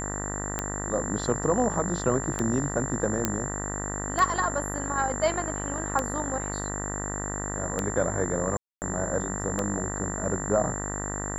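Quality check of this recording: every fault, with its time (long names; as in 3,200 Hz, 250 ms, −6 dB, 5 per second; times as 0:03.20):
mains buzz 50 Hz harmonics 39 −34 dBFS
scratch tick 33 1/3 rpm −12 dBFS
whistle 7,300 Hz −34 dBFS
0:03.25: click −7 dBFS
0:08.57–0:08.82: drop-out 249 ms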